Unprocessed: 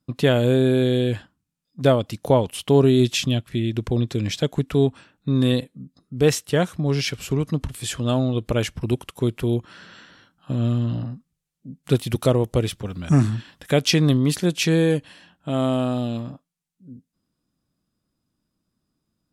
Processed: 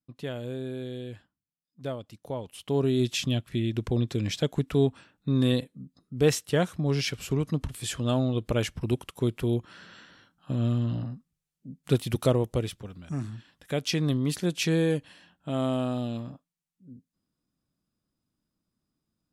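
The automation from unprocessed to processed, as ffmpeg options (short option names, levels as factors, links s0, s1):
-af "volume=2,afade=t=in:st=2.36:d=1.1:silence=0.237137,afade=t=out:st=12.3:d=0.82:silence=0.251189,afade=t=in:st=13.12:d=1.48:silence=0.298538"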